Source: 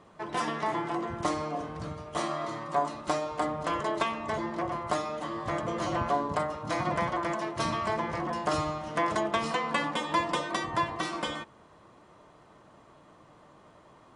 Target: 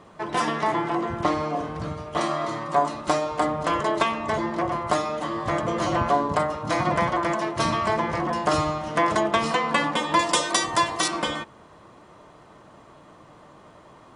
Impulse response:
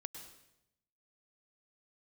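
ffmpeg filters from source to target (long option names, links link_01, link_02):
-filter_complex "[0:a]asettb=1/sr,asplit=3[link_01][link_02][link_03];[link_01]atrim=end=0.724[link_04];[link_02]atrim=start=0.72:end=2.21,asetpts=PTS-STARTPTS,afade=type=in:duration=0.004:curve=qsin,afade=type=out:start_time=1.486:duration=0.004:curve=qsin,acrossover=split=4500[link_05][link_06];[link_06]acompressor=threshold=-60dB:ratio=4:attack=1:release=60[link_07];[link_05][link_07]amix=inputs=2:normalize=0[link_08];[link_03]atrim=start=2.206[link_09];[link_04][link_08]acrossfade=duration=0.004:curve1=hsin:curve2=qsin[link_10];[link_10][link_09]acrossfade=duration=0.004:curve1=qsin:curve2=hsin,asettb=1/sr,asplit=3[link_11][link_12][link_13];[link_11]atrim=end=10.194[link_14];[link_12]atrim=start=10.19:end=11.08,asetpts=PTS-STARTPTS,afade=type=in:duration=0.004:curve=qsin,afade=type=out:start_time=0.886:duration=0.004:curve=qsin,bass=frequency=250:gain=-6,treble=frequency=4000:gain=14[link_15];[link_13]atrim=start=11.076[link_16];[link_14][link_15]acrossfade=duration=0.004:curve1=hsin:curve2=qsin[link_17];[link_17][link_16]acrossfade=duration=0.004:curve1=qsin:curve2=hsin,volume=6.5dB"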